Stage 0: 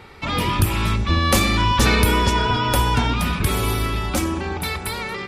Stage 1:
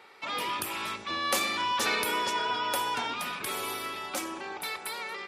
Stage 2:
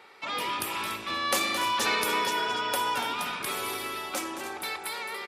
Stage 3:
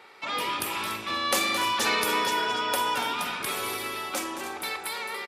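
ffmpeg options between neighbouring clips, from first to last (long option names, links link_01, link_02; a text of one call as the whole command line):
ffmpeg -i in.wav -af "highpass=470,volume=-8dB" out.wav
ffmpeg -i in.wav -af "aecho=1:1:218.7|288.6:0.282|0.251,volume=1dB" out.wav
ffmpeg -i in.wav -filter_complex "[0:a]asplit=2[link_01][link_02];[link_02]adelay=45,volume=-12dB[link_03];[link_01][link_03]amix=inputs=2:normalize=0,volume=1.5dB" out.wav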